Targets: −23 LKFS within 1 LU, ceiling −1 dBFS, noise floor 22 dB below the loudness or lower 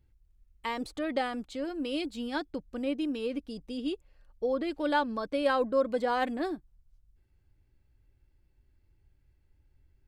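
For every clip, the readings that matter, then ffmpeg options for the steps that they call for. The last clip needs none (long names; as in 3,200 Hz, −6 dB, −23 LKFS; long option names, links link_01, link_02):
integrated loudness −32.0 LKFS; sample peak −15.0 dBFS; target loudness −23.0 LKFS
→ -af "volume=9dB"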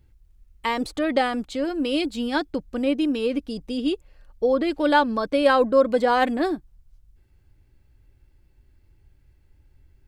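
integrated loudness −23.0 LKFS; sample peak −6.0 dBFS; background noise floor −59 dBFS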